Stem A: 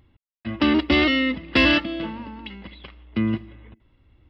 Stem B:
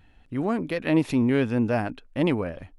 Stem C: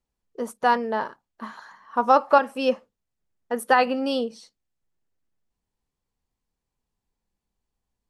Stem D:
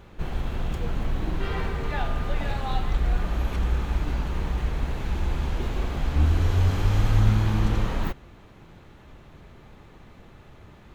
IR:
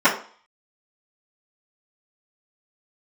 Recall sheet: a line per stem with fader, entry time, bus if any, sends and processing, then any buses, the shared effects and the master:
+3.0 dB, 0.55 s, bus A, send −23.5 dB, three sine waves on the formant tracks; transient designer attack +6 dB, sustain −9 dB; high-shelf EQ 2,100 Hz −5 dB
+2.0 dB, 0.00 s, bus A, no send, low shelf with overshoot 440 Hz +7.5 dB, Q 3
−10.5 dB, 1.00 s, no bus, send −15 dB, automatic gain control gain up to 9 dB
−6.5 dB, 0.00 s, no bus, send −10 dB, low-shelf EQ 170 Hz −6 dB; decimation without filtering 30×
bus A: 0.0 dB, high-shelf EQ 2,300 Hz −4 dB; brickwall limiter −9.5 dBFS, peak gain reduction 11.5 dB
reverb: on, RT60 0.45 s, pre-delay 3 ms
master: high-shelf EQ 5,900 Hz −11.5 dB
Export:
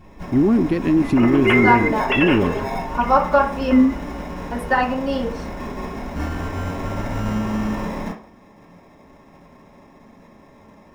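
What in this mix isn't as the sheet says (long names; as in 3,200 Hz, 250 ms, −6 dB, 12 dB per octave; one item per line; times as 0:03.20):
stem A: missing transient designer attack +6 dB, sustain −9 dB
master: missing high-shelf EQ 5,900 Hz −11.5 dB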